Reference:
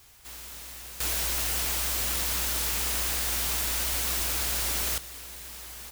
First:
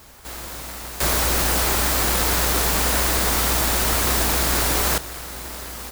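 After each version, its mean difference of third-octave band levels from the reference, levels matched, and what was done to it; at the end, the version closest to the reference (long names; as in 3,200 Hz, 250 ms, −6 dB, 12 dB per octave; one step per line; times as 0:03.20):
4.5 dB: in parallel at −3.5 dB: sample-rate reduction 3,300 Hz
on the sum: level +6.5 dB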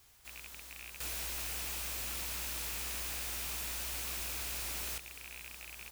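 1.5 dB: loose part that buzzes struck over −48 dBFS, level −23 dBFS
soft clipping −26 dBFS, distortion −13 dB
level −8 dB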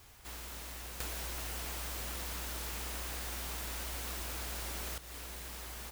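6.0 dB: high-shelf EQ 2,200 Hz −8 dB
downward compressor 6 to 1, threshold −40 dBFS, peak gain reduction 9.5 dB
level +2.5 dB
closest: second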